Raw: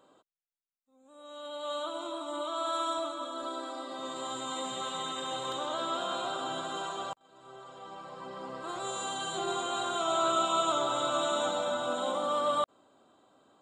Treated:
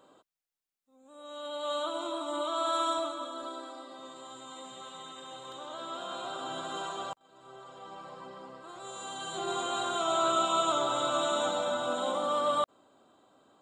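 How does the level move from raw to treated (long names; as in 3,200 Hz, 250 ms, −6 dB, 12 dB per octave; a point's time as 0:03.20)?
0:02.89 +2.5 dB
0:04.24 −9.5 dB
0:05.45 −9.5 dB
0:06.77 −0.5 dB
0:08.09 −0.5 dB
0:08.70 −9 dB
0:09.61 +0.5 dB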